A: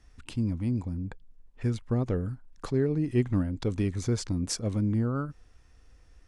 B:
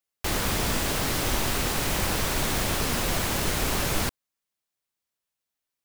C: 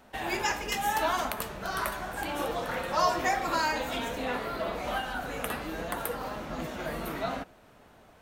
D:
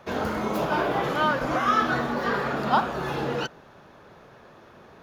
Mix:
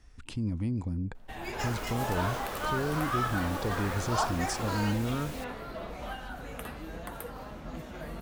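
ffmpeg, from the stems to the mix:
ffmpeg -i stem1.wav -i stem2.wav -i stem3.wav -i stem4.wav -filter_complex "[0:a]alimiter=level_in=1.5dB:limit=-24dB:level=0:latency=1,volume=-1.5dB,volume=1dB[link_01];[1:a]adelay=1350,volume=-18.5dB[link_02];[2:a]lowshelf=frequency=180:gain=10.5,adelay=1150,volume=-8.5dB[link_03];[3:a]highpass=510,adelay=1450,volume=-9dB[link_04];[link_01][link_02][link_03][link_04]amix=inputs=4:normalize=0" out.wav

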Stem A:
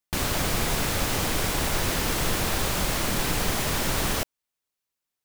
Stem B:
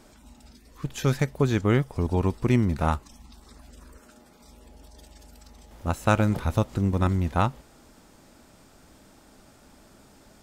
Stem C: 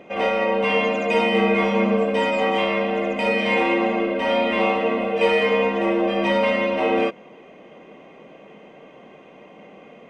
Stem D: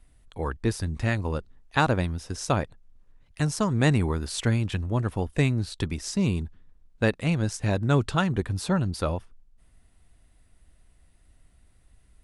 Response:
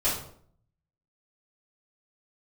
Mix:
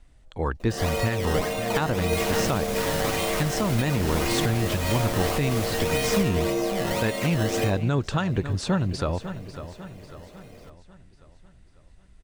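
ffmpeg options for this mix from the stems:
-filter_complex "[0:a]alimiter=limit=-20dB:level=0:latency=1,adelay=2000,volume=-2dB[link_01];[1:a]aeval=exprs='val(0)*sin(2*PI*570*n/s)':channel_layout=same,volume=-20dB[link_02];[2:a]equalizer=frequency=980:width=1.5:gain=-3.5,acrusher=samples=13:mix=1:aa=0.000001:lfo=1:lforange=13:lforate=1.8,adelay=600,volume=-6.5dB,asplit=2[link_03][link_04];[link_04]volume=-15dB[link_05];[3:a]lowpass=frequency=7800:width=0.5412,lowpass=frequency=7800:width=1.3066,volume=3dB,asplit=2[link_06][link_07];[link_07]volume=-14.5dB[link_08];[4:a]atrim=start_sample=2205[link_09];[link_05][link_09]afir=irnorm=-1:irlink=0[link_10];[link_08]aecho=0:1:547|1094|1641|2188|2735|3282|3829:1|0.49|0.24|0.118|0.0576|0.0282|0.0138[link_11];[link_01][link_02][link_03][link_06][link_10][link_11]amix=inputs=6:normalize=0,alimiter=limit=-13dB:level=0:latency=1:release=180"

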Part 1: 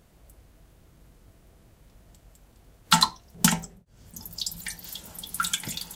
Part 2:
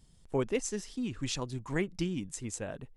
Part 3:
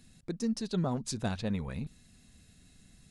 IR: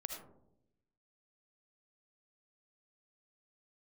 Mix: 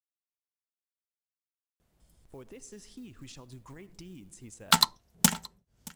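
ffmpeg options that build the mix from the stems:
-filter_complex "[0:a]aeval=exprs='0.841*(cos(1*acos(clip(val(0)/0.841,-1,1)))-cos(1*PI/2))+0.0944*(cos(7*acos(clip(val(0)/0.841,-1,1)))-cos(7*PI/2))':channel_layout=same,adelay=1800,volume=-0.5dB,asplit=2[link_01][link_02];[link_02]volume=-23dB[link_03];[1:a]alimiter=level_in=5.5dB:limit=-24dB:level=0:latency=1:release=101,volume=-5.5dB,acrusher=bits=7:mode=log:mix=0:aa=0.000001,adelay=2000,volume=-6.5dB,asplit=2[link_04][link_05];[link_05]volume=-14dB[link_06];[link_04]highshelf=frequency=9200:gain=7,acompressor=threshold=-47dB:ratio=2.5,volume=0dB[link_07];[3:a]atrim=start_sample=2205[link_08];[link_06][link_08]afir=irnorm=-1:irlink=0[link_09];[link_03]aecho=0:1:624:1[link_10];[link_01][link_07][link_09][link_10]amix=inputs=4:normalize=0"

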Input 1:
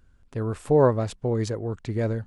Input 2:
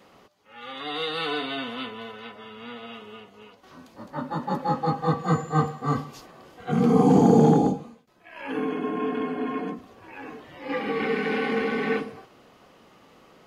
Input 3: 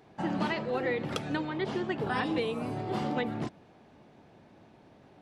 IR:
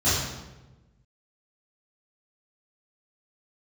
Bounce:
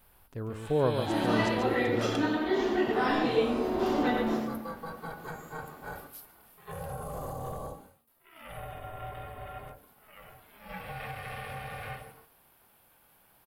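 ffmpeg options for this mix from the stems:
-filter_complex "[0:a]volume=-8.5dB,asplit=3[link_01][link_02][link_03];[link_02]volume=-6dB[link_04];[1:a]highpass=frequency=410:poles=1,aexciter=amount=9.3:drive=8.9:freq=9400,volume=-7.5dB,asplit=2[link_05][link_06];[link_06]volume=-21dB[link_07];[2:a]highpass=frequency=250:width=0.5412,highpass=frequency=250:width=1.3066,adelay=850,volume=-2dB,asplit=3[link_08][link_09][link_10];[link_09]volume=-11dB[link_11];[link_10]volume=-3.5dB[link_12];[link_03]apad=whole_len=267530[link_13];[link_08][link_13]sidechaincompress=threshold=-47dB:ratio=8:attack=16:release=1120[link_14];[link_05][link_14]amix=inputs=2:normalize=0,aeval=exprs='val(0)*sin(2*PI*320*n/s)':channel_layout=same,alimiter=level_in=4.5dB:limit=-24dB:level=0:latency=1:release=84,volume=-4.5dB,volume=0dB[link_15];[3:a]atrim=start_sample=2205[link_16];[link_11][link_16]afir=irnorm=-1:irlink=0[link_17];[link_04][link_07][link_12]amix=inputs=3:normalize=0,aecho=0:1:140:1[link_18];[link_01][link_15][link_17][link_18]amix=inputs=4:normalize=0"

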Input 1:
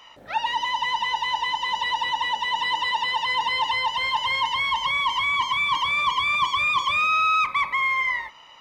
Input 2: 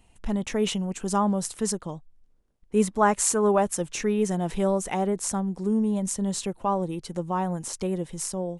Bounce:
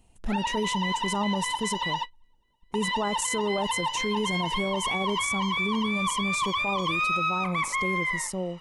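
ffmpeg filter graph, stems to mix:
ffmpeg -i stem1.wav -i stem2.wav -filter_complex "[0:a]volume=-4dB[link_01];[1:a]equalizer=frequency=1900:width=0.88:gain=-6,volume=-0.5dB,asplit=2[link_02][link_03];[link_03]apad=whole_len=379593[link_04];[link_01][link_04]sidechaingate=range=-46dB:threshold=-42dB:ratio=16:detection=peak[link_05];[link_05][link_02]amix=inputs=2:normalize=0,alimiter=limit=-19dB:level=0:latency=1:release=15" out.wav

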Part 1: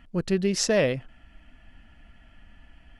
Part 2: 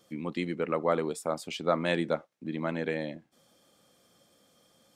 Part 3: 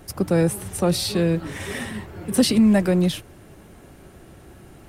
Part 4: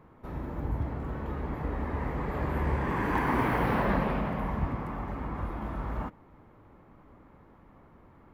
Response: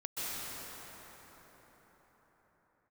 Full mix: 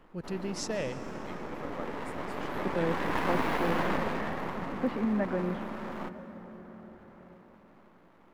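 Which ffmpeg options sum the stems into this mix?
-filter_complex "[0:a]volume=-12.5dB,asplit=2[link_01][link_02];[link_02]volume=-15dB[link_03];[1:a]adelay=900,volume=-15.5dB[link_04];[2:a]lowpass=frequency=1900:width=0.5412,lowpass=frequency=1900:width=1.3066,lowshelf=frequency=240:gain=-10.5,adelay=2450,volume=-9.5dB,asplit=2[link_05][link_06];[link_06]volume=-11.5dB[link_07];[3:a]highpass=frequency=190:width=0.5412,highpass=frequency=190:width=1.3066,aeval=exprs='max(val(0),0)':channel_layout=same,volume=1.5dB,asplit=2[link_08][link_09];[link_09]volume=-16.5dB[link_10];[4:a]atrim=start_sample=2205[link_11];[link_03][link_07][link_10]amix=inputs=3:normalize=0[link_12];[link_12][link_11]afir=irnorm=-1:irlink=0[link_13];[link_01][link_04][link_05][link_08][link_13]amix=inputs=5:normalize=0"

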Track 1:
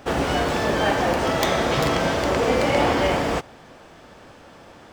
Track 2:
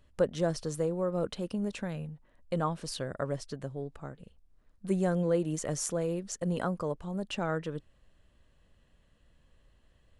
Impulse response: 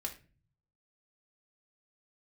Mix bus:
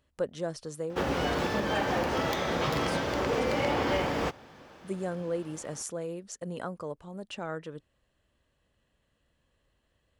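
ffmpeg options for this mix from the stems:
-filter_complex "[0:a]highpass=47,equalizer=frequency=8500:width_type=o:width=0.47:gain=-7,bandreject=frequency=680:width=12,adelay=900,volume=-5.5dB[link_01];[1:a]highpass=frequency=98:poles=1,equalizer=frequency=180:width_type=o:width=0.77:gain=-3,volume=-3.5dB[link_02];[link_01][link_02]amix=inputs=2:normalize=0,alimiter=limit=-18dB:level=0:latency=1:release=242"

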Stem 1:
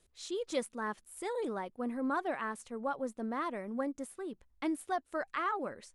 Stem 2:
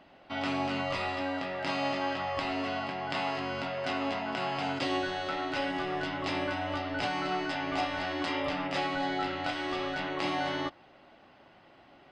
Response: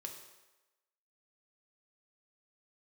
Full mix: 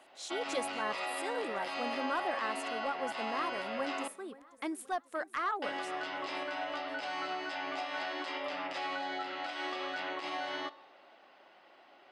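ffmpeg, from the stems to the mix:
-filter_complex "[0:a]highpass=frequency=560:poles=1,aeval=exprs='0.0944*sin(PI/2*1.41*val(0)/0.0944)':channel_layout=same,volume=-5dB,asplit=2[link_01][link_02];[link_02]volume=-18.5dB[link_03];[1:a]alimiter=level_in=1.5dB:limit=-24dB:level=0:latency=1:release=143,volume=-1.5dB,highpass=440,volume=-3dB,asplit=3[link_04][link_05][link_06];[link_04]atrim=end=4.08,asetpts=PTS-STARTPTS,afade=type=out:start_time=4.076:duration=0.004:curve=hsin[link_07];[link_05]atrim=start=4.08:end=5.62,asetpts=PTS-STARTPTS,volume=0[link_08];[link_06]atrim=start=5.62,asetpts=PTS-STARTPTS,afade=type=in:duration=0.004:curve=hsin[link_09];[link_07][link_08][link_09]concat=n=3:v=0:a=1,asplit=2[link_10][link_11];[link_11]volume=-7dB[link_12];[2:a]atrim=start_sample=2205[link_13];[link_12][link_13]afir=irnorm=-1:irlink=0[link_14];[link_03]aecho=0:1:528|1056|1584|2112|2640|3168|3696:1|0.47|0.221|0.104|0.0488|0.0229|0.0108[link_15];[link_01][link_10][link_14][link_15]amix=inputs=4:normalize=0"

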